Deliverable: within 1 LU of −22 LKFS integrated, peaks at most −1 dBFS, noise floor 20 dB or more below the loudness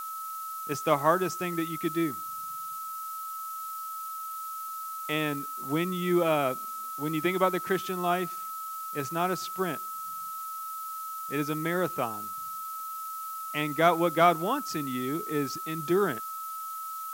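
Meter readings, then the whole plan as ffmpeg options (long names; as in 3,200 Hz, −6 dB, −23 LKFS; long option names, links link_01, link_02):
interfering tone 1,300 Hz; level of the tone −35 dBFS; background noise floor −37 dBFS; target noise floor −50 dBFS; integrated loudness −30.0 LKFS; sample peak −7.5 dBFS; target loudness −22.0 LKFS
→ -af "bandreject=frequency=1300:width=30"
-af "afftdn=noise_reduction=13:noise_floor=-37"
-af "volume=8dB,alimiter=limit=-1dB:level=0:latency=1"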